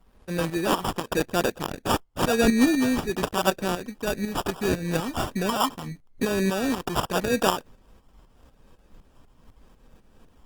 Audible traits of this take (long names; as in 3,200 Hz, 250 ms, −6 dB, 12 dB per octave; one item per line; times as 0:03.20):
phaser sweep stages 8, 0.83 Hz, lowest notch 590–1,700 Hz
tremolo saw up 4 Hz, depth 65%
aliases and images of a low sample rate 2,100 Hz, jitter 0%
Opus